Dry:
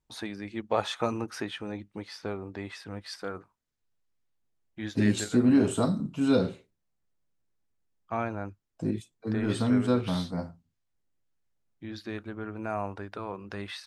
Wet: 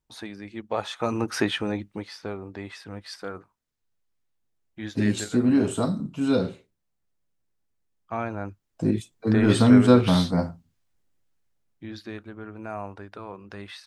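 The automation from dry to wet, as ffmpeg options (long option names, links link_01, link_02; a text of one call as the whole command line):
ffmpeg -i in.wav -af "volume=19.5dB,afade=type=in:start_time=0.99:duration=0.46:silence=0.251189,afade=type=out:start_time=1.45:duration=0.71:silence=0.316228,afade=type=in:start_time=8.21:duration=1.23:silence=0.375837,afade=type=out:start_time=10.36:duration=1.9:silence=0.266073" out.wav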